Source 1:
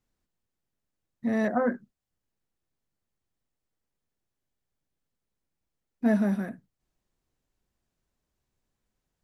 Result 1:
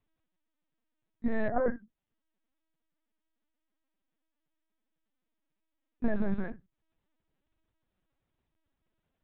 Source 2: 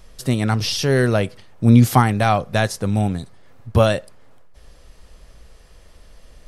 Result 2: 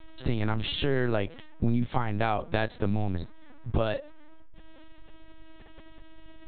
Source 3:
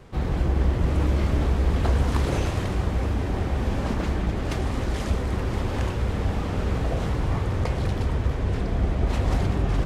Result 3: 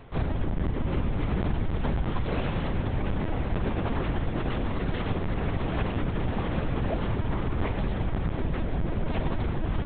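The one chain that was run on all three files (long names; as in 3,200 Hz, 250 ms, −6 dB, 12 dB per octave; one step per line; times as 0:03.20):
downward compressor 6 to 1, threshold −23 dBFS
linear-prediction vocoder at 8 kHz pitch kept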